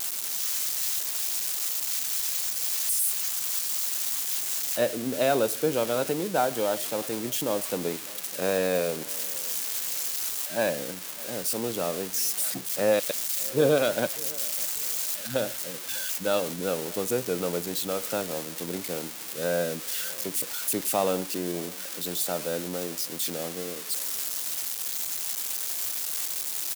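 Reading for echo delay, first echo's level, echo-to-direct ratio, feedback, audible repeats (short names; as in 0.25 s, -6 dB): 0.599 s, -22.5 dB, -22.0 dB, 33%, 2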